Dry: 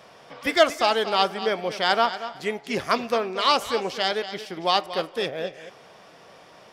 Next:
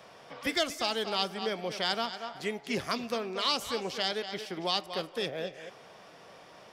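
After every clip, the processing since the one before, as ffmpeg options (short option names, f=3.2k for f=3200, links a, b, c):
-filter_complex "[0:a]acrossover=split=280|3000[a][b][c];[b]acompressor=threshold=-31dB:ratio=3[d];[a][d][c]amix=inputs=3:normalize=0,volume=-3dB"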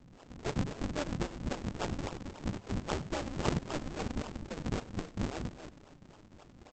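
-af "aresample=16000,acrusher=samples=37:mix=1:aa=0.000001:lfo=1:lforange=59.2:lforate=3.7,aresample=44100,aeval=exprs='val(0)*sin(2*PI*150*n/s)':c=same,aecho=1:1:96:0.126"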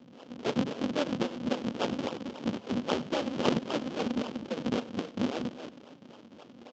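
-af "highpass=210,equalizer=f=240:t=q:w=4:g=9,equalizer=f=510:t=q:w=4:g=6,equalizer=f=1.9k:t=q:w=4:g=-3,equalizer=f=3.1k:t=q:w=4:g=6,lowpass=f=5.9k:w=0.5412,lowpass=f=5.9k:w=1.3066,volume=4dB"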